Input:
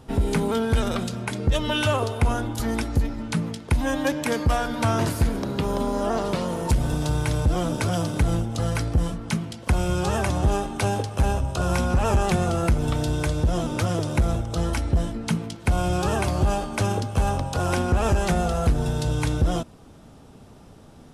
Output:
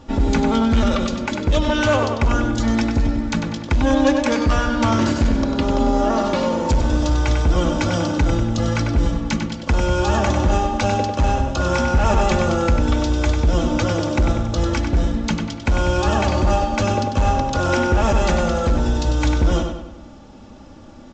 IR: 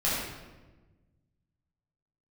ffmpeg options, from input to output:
-filter_complex "[0:a]aecho=1:1:3.5:0.6,asoftclip=type=hard:threshold=0.168,asplit=2[s0][s1];[s1]adelay=97,lowpass=f=4400:p=1,volume=0.562,asplit=2[s2][s3];[s3]adelay=97,lowpass=f=4400:p=1,volume=0.49,asplit=2[s4][s5];[s5]adelay=97,lowpass=f=4400:p=1,volume=0.49,asplit=2[s6][s7];[s7]adelay=97,lowpass=f=4400:p=1,volume=0.49,asplit=2[s8][s9];[s9]adelay=97,lowpass=f=4400:p=1,volume=0.49,asplit=2[s10][s11];[s11]adelay=97,lowpass=f=4400:p=1,volume=0.49[s12];[s0][s2][s4][s6][s8][s10][s12]amix=inputs=7:normalize=0,volume=1.5" -ar 16000 -c:a pcm_alaw

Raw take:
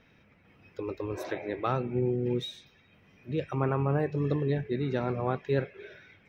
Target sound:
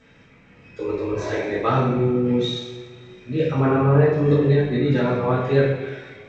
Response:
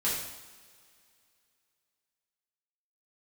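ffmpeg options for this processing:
-filter_complex "[1:a]atrim=start_sample=2205[s0];[0:a][s0]afir=irnorm=-1:irlink=0,volume=1.33" -ar 16000 -c:a g722

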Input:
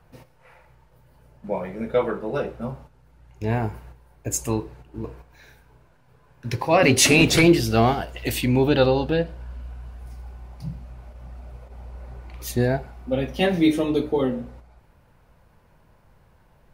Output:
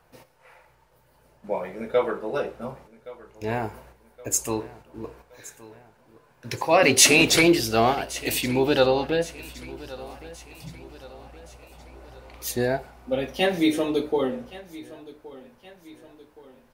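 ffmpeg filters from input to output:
-filter_complex "[0:a]bass=f=250:g=-10,treble=f=4000:g=3,asplit=2[s0][s1];[s1]aecho=0:1:1120|2240|3360|4480:0.112|0.0527|0.0248|0.0116[s2];[s0][s2]amix=inputs=2:normalize=0"

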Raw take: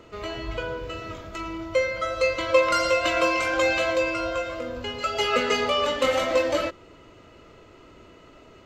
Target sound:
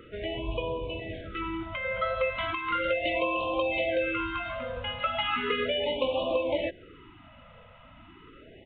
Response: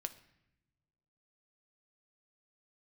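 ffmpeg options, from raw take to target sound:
-af "aresample=8000,aresample=44100,acompressor=threshold=0.0708:ratio=10,afftfilt=real='re*(1-between(b*sr/1024,330*pow(1700/330,0.5+0.5*sin(2*PI*0.36*pts/sr))/1.41,330*pow(1700/330,0.5+0.5*sin(2*PI*0.36*pts/sr))*1.41))':imag='im*(1-between(b*sr/1024,330*pow(1700/330,0.5+0.5*sin(2*PI*0.36*pts/sr))/1.41,330*pow(1700/330,0.5+0.5*sin(2*PI*0.36*pts/sr))*1.41))':win_size=1024:overlap=0.75"

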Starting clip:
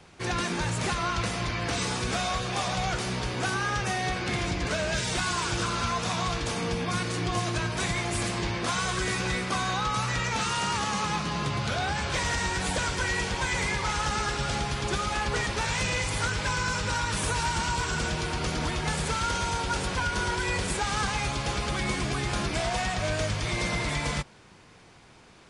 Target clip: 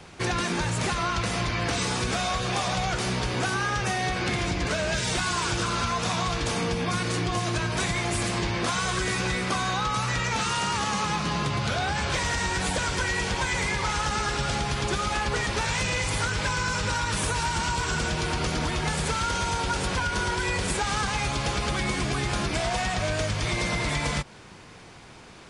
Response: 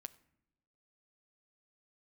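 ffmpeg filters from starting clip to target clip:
-af "acompressor=threshold=0.0316:ratio=6,volume=2.11"

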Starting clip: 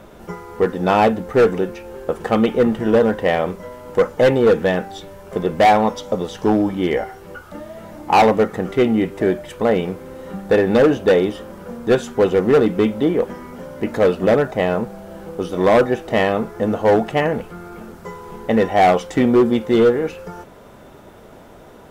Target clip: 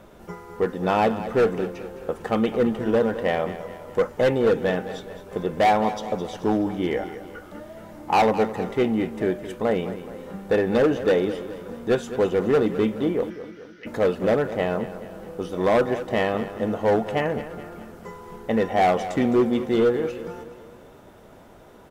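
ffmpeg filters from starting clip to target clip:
-filter_complex "[0:a]asplit=3[s0][s1][s2];[s0]afade=t=out:st=13.29:d=0.02[s3];[s1]asuperpass=centerf=2900:order=20:qfactor=0.6,afade=t=in:st=13.29:d=0.02,afade=t=out:st=13.85:d=0.02[s4];[s2]afade=t=in:st=13.85:d=0.02[s5];[s3][s4][s5]amix=inputs=3:normalize=0,aecho=1:1:212|424|636|848|1060:0.224|0.112|0.056|0.028|0.014,volume=0.501"

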